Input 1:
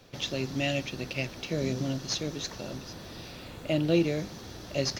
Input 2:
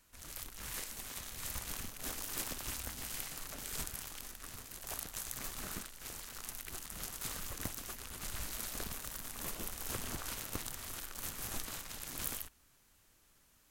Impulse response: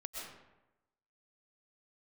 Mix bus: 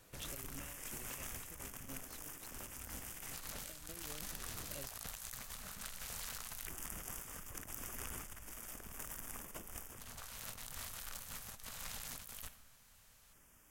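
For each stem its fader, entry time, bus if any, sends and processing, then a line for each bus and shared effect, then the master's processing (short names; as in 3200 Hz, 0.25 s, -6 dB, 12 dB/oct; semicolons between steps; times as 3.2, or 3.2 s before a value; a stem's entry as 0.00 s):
-15.0 dB, 0.00 s, no send, compressor, threshold -36 dBFS, peak gain reduction 15.5 dB
-1.0 dB, 0.00 s, send -17 dB, LFO notch square 0.15 Hz 330–4100 Hz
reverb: on, RT60 1.0 s, pre-delay 85 ms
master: negative-ratio compressor -48 dBFS, ratio -1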